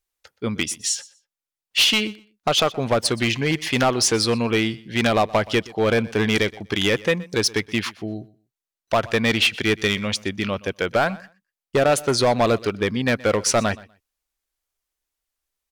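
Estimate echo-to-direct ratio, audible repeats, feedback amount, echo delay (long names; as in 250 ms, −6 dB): −21.0 dB, 1, repeats not evenly spaced, 123 ms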